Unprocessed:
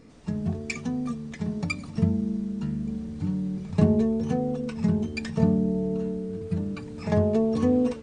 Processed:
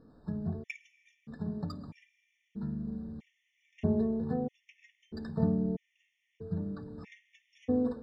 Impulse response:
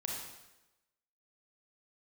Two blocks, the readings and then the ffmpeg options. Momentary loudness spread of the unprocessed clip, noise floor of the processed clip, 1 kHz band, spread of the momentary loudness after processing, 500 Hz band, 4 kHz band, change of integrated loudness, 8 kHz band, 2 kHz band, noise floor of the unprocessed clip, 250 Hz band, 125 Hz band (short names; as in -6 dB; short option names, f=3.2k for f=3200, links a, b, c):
9 LU, -79 dBFS, -10.0 dB, 18 LU, -10.0 dB, under -10 dB, -8.0 dB, n/a, under -10 dB, -40 dBFS, -9.5 dB, -10.5 dB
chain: -filter_complex "[0:a]adynamicsmooth=sensitivity=1:basefreq=3.1k,asplit=2[a][b];[1:a]atrim=start_sample=2205,asetrate=26019,aresample=44100,adelay=52[c];[b][c]afir=irnorm=-1:irlink=0,volume=-23.5dB[d];[a][d]amix=inputs=2:normalize=0,afftfilt=real='re*gt(sin(2*PI*0.78*pts/sr)*(1-2*mod(floor(b*sr/1024/1800),2)),0)':imag='im*gt(sin(2*PI*0.78*pts/sr)*(1-2*mod(floor(b*sr/1024/1800),2)),0)':win_size=1024:overlap=0.75,volume=-6.5dB"